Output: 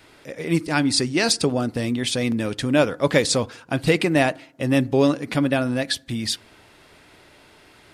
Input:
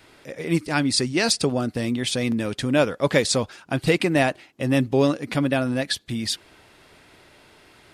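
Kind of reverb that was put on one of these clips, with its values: FDN reverb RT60 0.64 s, low-frequency decay 1.1×, high-frequency decay 0.35×, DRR 19.5 dB; trim +1 dB

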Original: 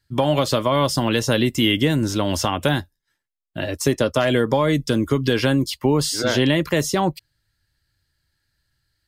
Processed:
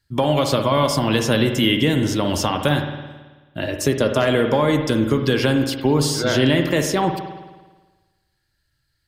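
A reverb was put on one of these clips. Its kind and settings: spring tank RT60 1.3 s, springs 54 ms, chirp 50 ms, DRR 5.5 dB

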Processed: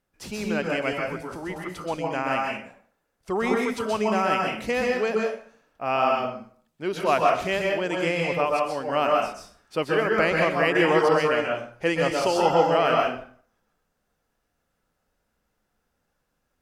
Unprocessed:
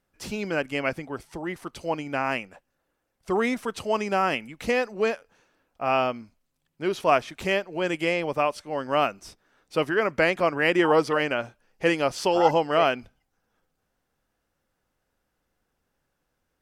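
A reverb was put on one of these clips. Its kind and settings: plate-style reverb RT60 0.52 s, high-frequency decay 0.75×, pre-delay 115 ms, DRR -1 dB; trim -2 dB

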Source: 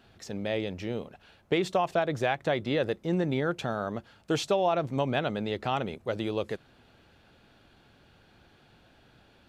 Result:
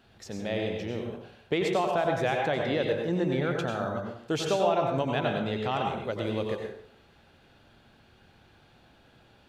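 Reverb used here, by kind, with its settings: plate-style reverb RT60 0.63 s, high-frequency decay 0.7×, pre-delay 80 ms, DRR 1 dB; trim -1.5 dB

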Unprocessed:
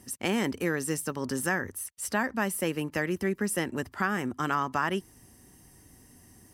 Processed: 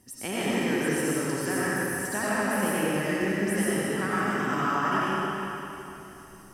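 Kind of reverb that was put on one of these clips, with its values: algorithmic reverb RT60 3.2 s, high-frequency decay 0.9×, pre-delay 50 ms, DRR -9 dB; trim -6 dB

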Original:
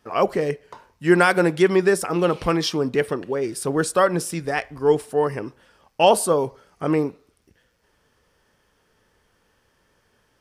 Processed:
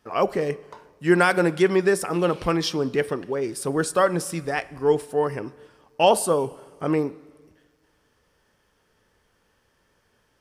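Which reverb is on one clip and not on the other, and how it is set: plate-style reverb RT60 1.7 s, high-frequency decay 0.85×, DRR 19.5 dB; trim -2 dB

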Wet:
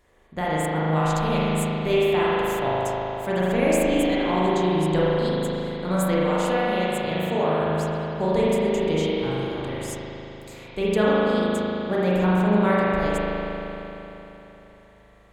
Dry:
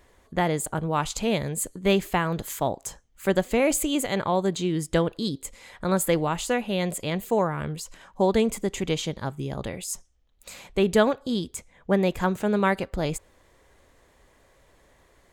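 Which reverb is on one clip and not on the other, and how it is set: spring tank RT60 3.6 s, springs 38 ms, chirp 45 ms, DRR -8.5 dB; trim -6 dB

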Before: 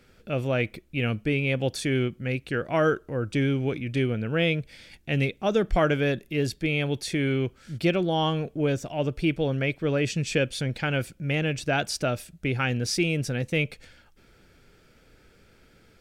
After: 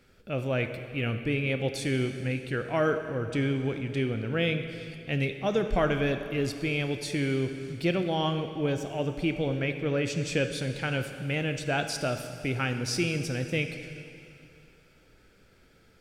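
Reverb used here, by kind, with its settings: plate-style reverb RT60 2.6 s, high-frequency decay 1×, DRR 7 dB; trim -3.5 dB

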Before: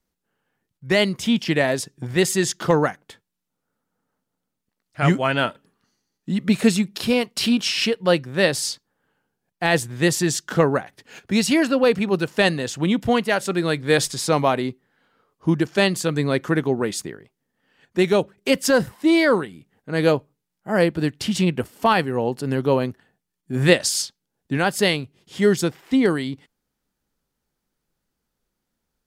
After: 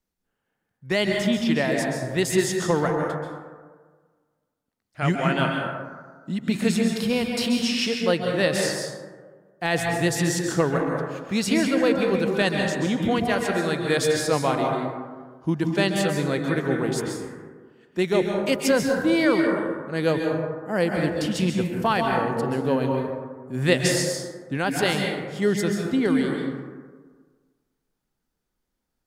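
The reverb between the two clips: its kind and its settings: plate-style reverb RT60 1.5 s, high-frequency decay 0.35×, pre-delay 120 ms, DRR 1 dB; trim -5 dB

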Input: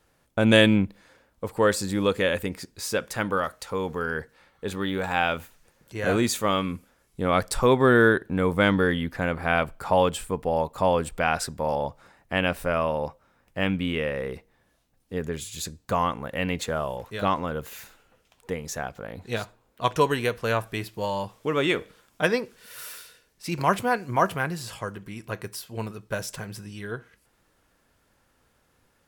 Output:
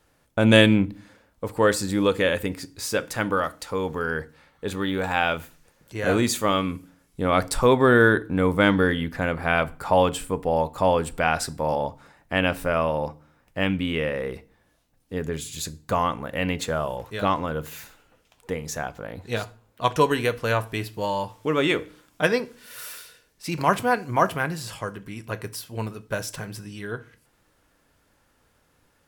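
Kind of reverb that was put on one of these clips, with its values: FDN reverb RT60 0.39 s, low-frequency decay 1.55×, high-frequency decay 0.9×, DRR 14.5 dB; trim +1.5 dB

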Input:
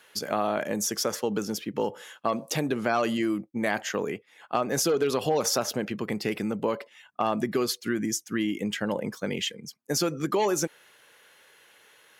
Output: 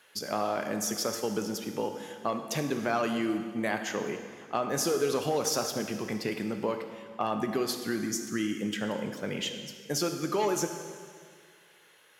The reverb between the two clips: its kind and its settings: plate-style reverb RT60 1.9 s, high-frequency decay 0.95×, DRR 5.5 dB; trim -4 dB

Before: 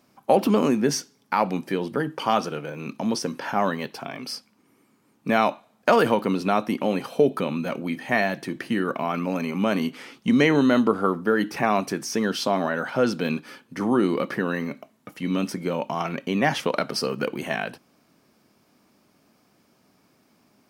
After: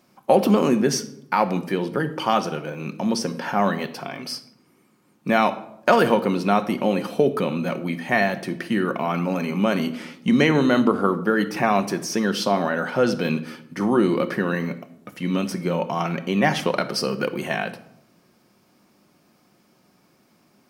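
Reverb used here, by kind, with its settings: simulated room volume 2100 m³, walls furnished, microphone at 0.94 m; trim +1.5 dB

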